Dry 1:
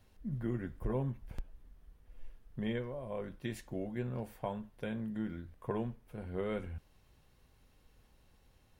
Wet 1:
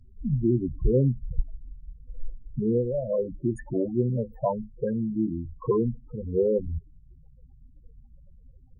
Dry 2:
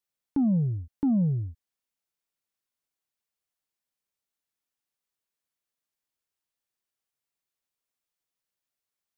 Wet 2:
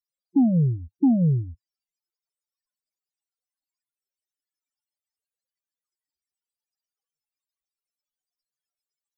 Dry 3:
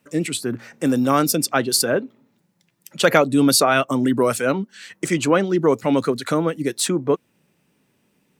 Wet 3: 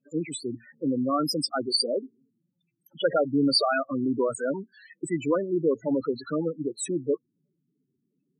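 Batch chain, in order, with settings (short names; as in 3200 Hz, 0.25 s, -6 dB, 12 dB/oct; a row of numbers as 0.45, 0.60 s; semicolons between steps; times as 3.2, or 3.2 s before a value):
loudest bins only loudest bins 8; thirty-one-band EQ 100 Hz -10 dB, 200 Hz -8 dB, 5000 Hz +12 dB, 8000 Hz +7 dB; normalise peaks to -12 dBFS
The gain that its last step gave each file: +15.5, +8.0, -6.0 dB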